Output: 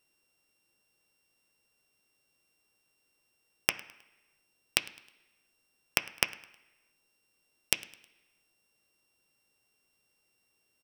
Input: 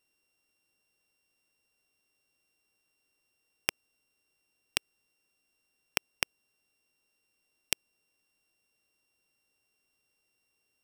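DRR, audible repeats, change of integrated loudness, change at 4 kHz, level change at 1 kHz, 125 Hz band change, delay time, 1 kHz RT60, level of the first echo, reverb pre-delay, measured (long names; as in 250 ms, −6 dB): 9.0 dB, 2, +3.0 dB, +3.0 dB, +3.5 dB, +4.0 dB, 105 ms, 1.0 s, −22.0 dB, 3 ms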